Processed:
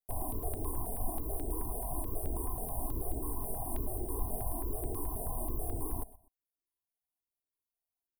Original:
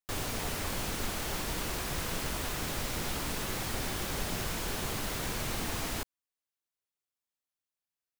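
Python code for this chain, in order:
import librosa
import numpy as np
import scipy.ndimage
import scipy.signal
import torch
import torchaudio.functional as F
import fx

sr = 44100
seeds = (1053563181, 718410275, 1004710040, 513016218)

p1 = scipy.signal.sosfilt(scipy.signal.cheby1(5, 1.0, [1000.0, 9100.0], 'bandstop', fs=sr, output='sos'), x)
p2 = p1 + 0.73 * np.pad(p1, (int(2.8 * sr / 1000.0), 0))[:len(p1)]
p3 = fx.vibrato(p2, sr, rate_hz=5.3, depth_cents=33.0)
p4 = p3 + fx.echo_feedback(p3, sr, ms=123, feedback_pct=26, wet_db=-19.0, dry=0)
y = fx.phaser_held(p4, sr, hz=9.3, low_hz=320.0, high_hz=4000.0)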